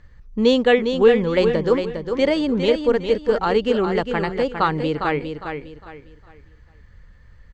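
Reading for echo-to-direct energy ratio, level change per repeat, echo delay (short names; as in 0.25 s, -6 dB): -6.5 dB, -10.5 dB, 0.406 s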